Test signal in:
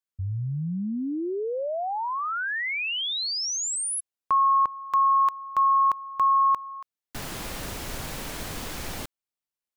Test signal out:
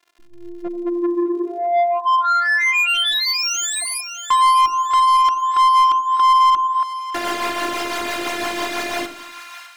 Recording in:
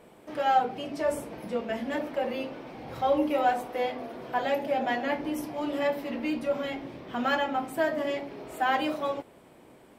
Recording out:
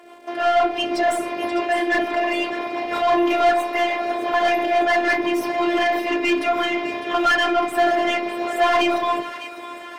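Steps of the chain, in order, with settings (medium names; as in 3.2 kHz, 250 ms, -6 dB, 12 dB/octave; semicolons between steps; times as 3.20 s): high-pass 87 Hz 24 dB/octave; hum notches 50/100/150/200/250/300/350/400/450 Hz; dynamic bell 510 Hz, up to -6 dB, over -39 dBFS, Q 0.87; level rider gain up to 8.5 dB; rotary cabinet horn 6 Hz; crackle 85 per s -52 dBFS; one-sided clip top -19 dBFS, bottom -11.5 dBFS; robot voice 346 Hz; overdrive pedal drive 25 dB, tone 2.4 kHz, clips at -7.5 dBFS; two-band feedback delay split 1 kHz, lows 87 ms, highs 604 ms, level -11.5 dB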